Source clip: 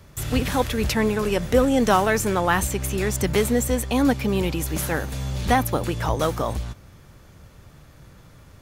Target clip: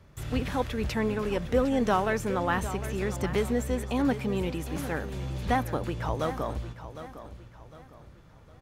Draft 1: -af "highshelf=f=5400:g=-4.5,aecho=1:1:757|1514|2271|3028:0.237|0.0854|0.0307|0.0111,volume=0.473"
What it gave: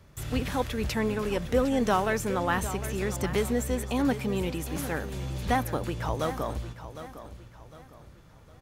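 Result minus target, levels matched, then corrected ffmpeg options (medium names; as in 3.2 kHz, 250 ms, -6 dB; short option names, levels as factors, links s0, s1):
8 kHz band +5.0 dB
-af "highshelf=f=5400:g=-12,aecho=1:1:757|1514|2271|3028:0.237|0.0854|0.0307|0.0111,volume=0.473"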